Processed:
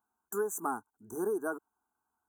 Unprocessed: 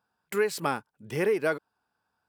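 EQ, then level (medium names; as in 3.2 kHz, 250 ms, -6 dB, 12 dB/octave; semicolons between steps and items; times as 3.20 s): brick-wall FIR band-stop 1.7–5.9 kHz; treble shelf 5.9 kHz +6 dB; static phaser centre 540 Hz, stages 6; -3.0 dB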